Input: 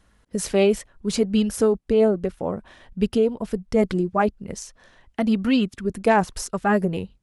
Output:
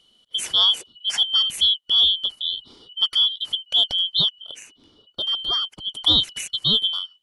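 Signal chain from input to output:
band-splitting scrambler in four parts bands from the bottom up 2413
0:04.41–0:05.92: parametric band 7,300 Hz −6.5 dB 3 octaves

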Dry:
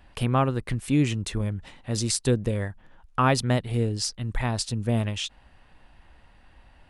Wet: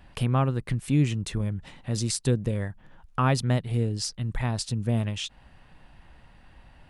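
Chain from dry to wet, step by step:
parametric band 150 Hz +6.5 dB 0.89 octaves
in parallel at 0 dB: downward compressor, threshold −35 dBFS, peak gain reduction 20 dB
on the sum: level −5 dB

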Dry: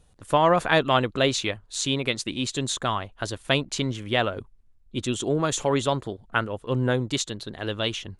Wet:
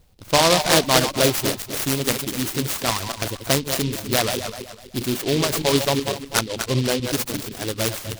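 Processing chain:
feedback delay that plays each chunk backwards 125 ms, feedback 57%, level −5.5 dB
reverb reduction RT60 0.54 s
short delay modulated by noise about 3,400 Hz, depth 0.14 ms
level +3 dB

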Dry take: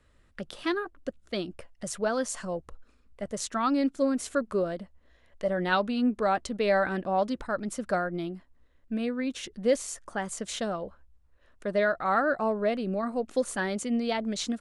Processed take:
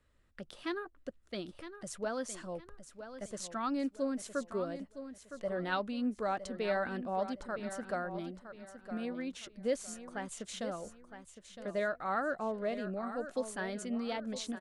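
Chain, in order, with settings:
repeating echo 962 ms, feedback 32%, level −11 dB
level −8.5 dB

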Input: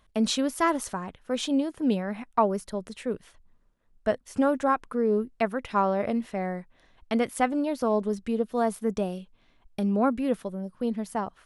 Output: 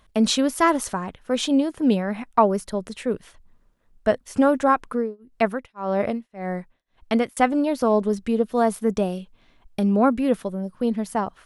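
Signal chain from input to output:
0:04.90–0:07.37: amplitude tremolo 1.8 Hz, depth 99%
level +5.5 dB

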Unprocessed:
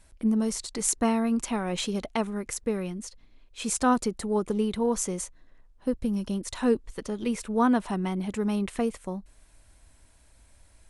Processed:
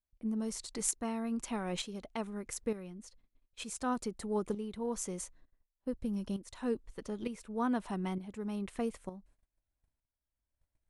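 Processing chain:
noise gate −50 dBFS, range −22 dB
shaped tremolo saw up 1.1 Hz, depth 65%
one half of a high-frequency compander decoder only
level −6 dB

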